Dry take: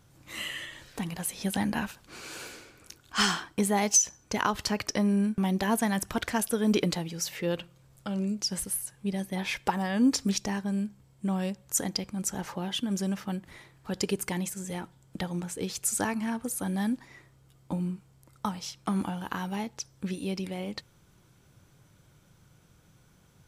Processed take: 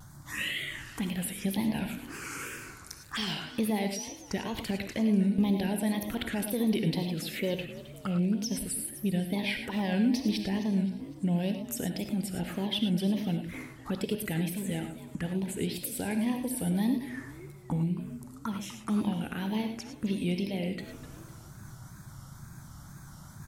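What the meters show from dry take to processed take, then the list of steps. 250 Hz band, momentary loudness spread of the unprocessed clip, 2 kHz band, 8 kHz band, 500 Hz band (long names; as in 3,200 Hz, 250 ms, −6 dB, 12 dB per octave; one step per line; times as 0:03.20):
+1.0 dB, 13 LU, −2.5 dB, −9.5 dB, −1.5 dB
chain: in parallel at +1 dB: downward compressor, threshold −41 dBFS, peak gain reduction 21 dB
on the sum: brickwall limiter −19.5 dBFS, peak gain reduction 8.5 dB
reversed playback
upward compression, threshold −38 dBFS
reversed playback
phaser swept by the level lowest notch 380 Hz, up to 1,300 Hz, full sweep at −27.5 dBFS
echo with shifted repeats 257 ms, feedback 41%, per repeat +50 Hz, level −15 dB
tape wow and flutter 150 cents
reverb whose tail is shaped and stops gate 130 ms rising, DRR 6.5 dB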